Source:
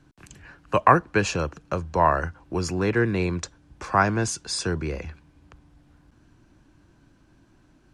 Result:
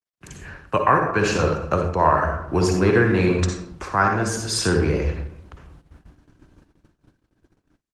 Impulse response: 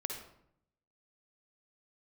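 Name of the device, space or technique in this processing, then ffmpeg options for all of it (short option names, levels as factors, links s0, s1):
speakerphone in a meeting room: -filter_complex "[0:a]adynamicequalizer=threshold=0.0224:dfrequency=1400:dqfactor=2.6:tfrequency=1400:tqfactor=2.6:attack=5:release=100:ratio=0.375:range=1.5:mode=boostabove:tftype=bell,asplit=3[s0][s1][s2];[s0]afade=t=out:st=0.86:d=0.02[s3];[s1]asplit=2[s4][s5];[s5]adelay=20,volume=0.224[s6];[s4][s6]amix=inputs=2:normalize=0,afade=t=in:st=0.86:d=0.02,afade=t=out:st=1.45:d=0.02[s7];[s2]afade=t=in:st=1.45:d=0.02[s8];[s3][s7][s8]amix=inputs=3:normalize=0[s9];[1:a]atrim=start_sample=2205[s10];[s9][s10]afir=irnorm=-1:irlink=0,dynaudnorm=f=140:g=3:m=3.98,agate=range=0.00631:threshold=0.00891:ratio=16:detection=peak,volume=0.668" -ar 48000 -c:a libopus -b:a 20k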